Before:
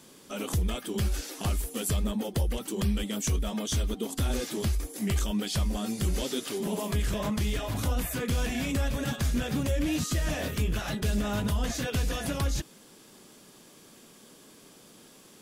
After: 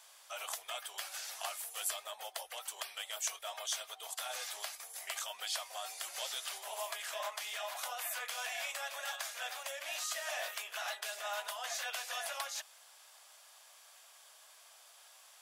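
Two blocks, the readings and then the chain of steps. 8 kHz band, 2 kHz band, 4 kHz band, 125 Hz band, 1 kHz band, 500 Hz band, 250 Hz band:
-3.5 dB, -2.5 dB, -3.0 dB, under -40 dB, -3.0 dB, -12.0 dB, under -40 dB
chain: elliptic high-pass 660 Hz, stop band 60 dB; trim -2.5 dB

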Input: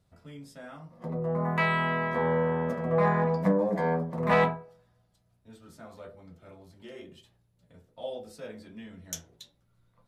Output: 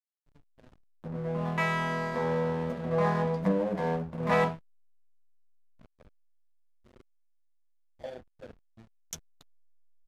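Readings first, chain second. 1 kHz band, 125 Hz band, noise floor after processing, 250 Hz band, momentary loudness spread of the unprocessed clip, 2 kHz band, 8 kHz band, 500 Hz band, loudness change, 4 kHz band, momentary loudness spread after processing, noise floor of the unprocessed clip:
-3.0 dB, -2.0 dB, -72 dBFS, -2.0 dB, 22 LU, -3.5 dB, no reading, -2.5 dB, -2.0 dB, -2.0 dB, 17 LU, -70 dBFS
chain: hysteresis with a dead band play -32.5 dBFS; resampled via 32 kHz; trim -2 dB

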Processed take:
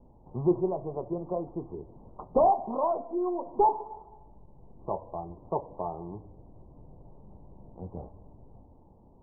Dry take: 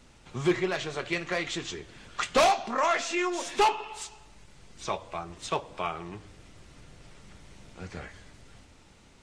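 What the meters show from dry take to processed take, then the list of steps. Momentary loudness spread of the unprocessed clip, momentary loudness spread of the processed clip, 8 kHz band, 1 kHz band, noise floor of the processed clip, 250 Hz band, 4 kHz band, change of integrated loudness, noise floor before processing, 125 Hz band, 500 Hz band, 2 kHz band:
18 LU, 20 LU, under -40 dB, -0.5 dB, -56 dBFS, +1.0 dB, under -40 dB, -1.0 dB, -56 dBFS, +1.0 dB, +1.0 dB, under -40 dB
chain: steep low-pass 990 Hz 72 dB/octave; trim +1 dB

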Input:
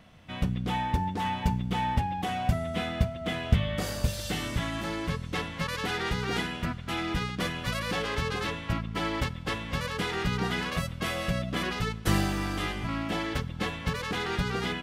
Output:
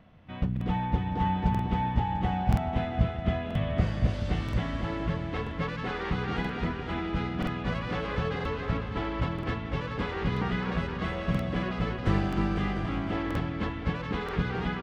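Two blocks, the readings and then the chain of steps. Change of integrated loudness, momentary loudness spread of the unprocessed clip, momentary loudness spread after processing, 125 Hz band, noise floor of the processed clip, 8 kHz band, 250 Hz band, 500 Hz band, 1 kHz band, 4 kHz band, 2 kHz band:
0.0 dB, 5 LU, 5 LU, +2.0 dB, -36 dBFS, under -15 dB, +2.0 dB, +0.5 dB, -0.5 dB, -7.5 dB, -3.5 dB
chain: tape spacing loss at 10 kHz 29 dB; bouncing-ball echo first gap 270 ms, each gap 0.85×, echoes 5; crackling interface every 0.98 s, samples 2048, repeat, from 0.52 s

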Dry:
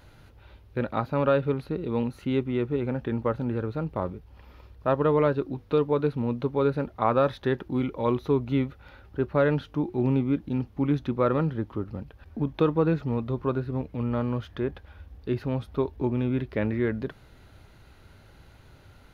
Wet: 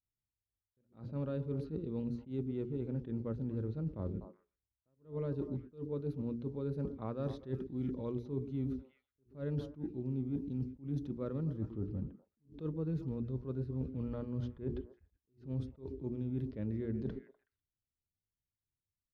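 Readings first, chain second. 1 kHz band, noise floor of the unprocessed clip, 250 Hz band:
-24.5 dB, -53 dBFS, -11.0 dB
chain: level-controlled noise filter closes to 500 Hz, open at -24 dBFS; hum notches 60/120/180/240/300/360/420 Hz; dynamic bell 3.9 kHz, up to -3 dB, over -48 dBFS, Q 0.81; gate -42 dBFS, range -45 dB; FFT filter 170 Hz 0 dB, 440 Hz -6 dB, 790 Hz -17 dB, 2.4 kHz -16 dB, 5.3 kHz -3 dB; repeats whose band climbs or falls 124 ms, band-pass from 310 Hz, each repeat 1.4 oct, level -10.5 dB; level-controlled noise filter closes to 1.8 kHz, open at -24 dBFS; reverse; compression 6:1, threshold -37 dBFS, peak gain reduction 15 dB; reverse; attacks held to a fixed rise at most 210 dB/s; trim +2.5 dB

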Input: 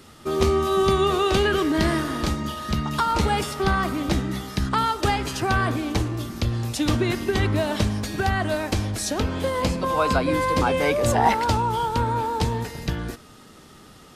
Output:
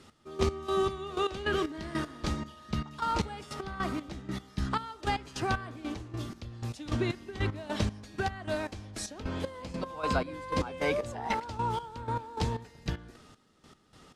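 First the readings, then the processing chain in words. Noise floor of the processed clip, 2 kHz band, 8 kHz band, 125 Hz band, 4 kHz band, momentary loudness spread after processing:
-57 dBFS, -10.0 dB, -12.5 dB, -11.0 dB, -11.0 dB, 9 LU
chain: low-pass 8.5 kHz 12 dB/octave; trance gate "x...x..x" 154 bpm -12 dB; trim -7 dB

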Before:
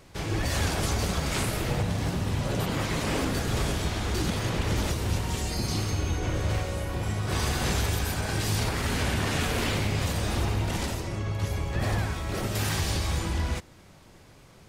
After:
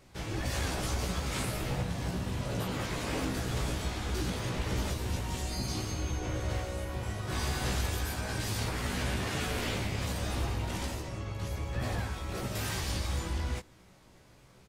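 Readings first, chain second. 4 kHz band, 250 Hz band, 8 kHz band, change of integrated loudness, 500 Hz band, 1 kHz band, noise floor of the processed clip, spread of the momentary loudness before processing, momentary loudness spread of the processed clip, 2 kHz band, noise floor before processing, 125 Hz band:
-5.5 dB, -5.5 dB, -5.5 dB, -5.5 dB, -5.5 dB, -5.5 dB, -58 dBFS, 4 LU, 4 LU, -5.5 dB, -53 dBFS, -6.0 dB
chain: doubling 16 ms -4 dB; trim -7 dB

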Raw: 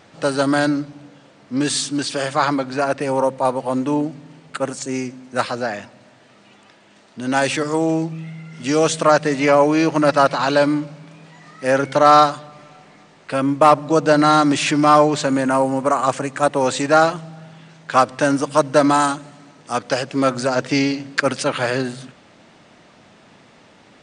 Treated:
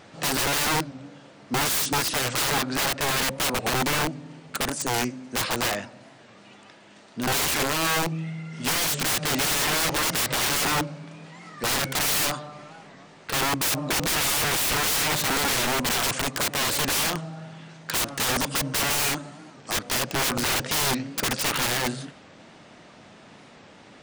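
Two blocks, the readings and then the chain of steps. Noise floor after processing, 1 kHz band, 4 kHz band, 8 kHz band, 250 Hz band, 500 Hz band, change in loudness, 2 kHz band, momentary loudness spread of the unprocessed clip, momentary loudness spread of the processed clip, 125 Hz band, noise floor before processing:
-50 dBFS, -10.5 dB, +3.0 dB, +4.5 dB, -12.0 dB, -14.0 dB, -5.5 dB, -2.0 dB, 13 LU, 14 LU, -5.0 dB, -50 dBFS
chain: integer overflow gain 19 dB; warped record 45 rpm, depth 160 cents

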